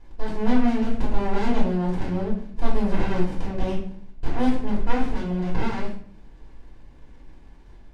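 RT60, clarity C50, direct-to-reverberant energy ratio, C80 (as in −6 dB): 0.55 s, 5.5 dB, −7.0 dB, 9.5 dB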